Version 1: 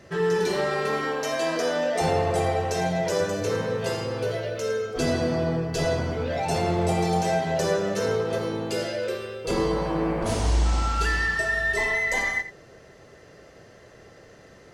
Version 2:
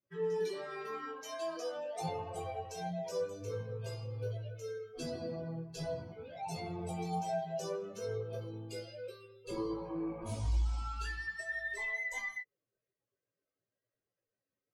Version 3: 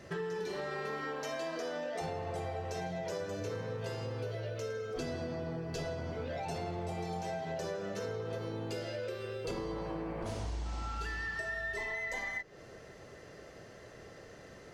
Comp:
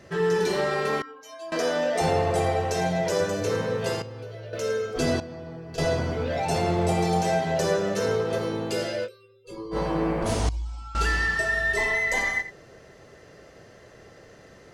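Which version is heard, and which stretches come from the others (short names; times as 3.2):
1
1.02–1.52 from 2
4.02–4.53 from 3
5.2–5.78 from 3
9.06–9.74 from 2, crossfade 0.06 s
10.49–10.95 from 2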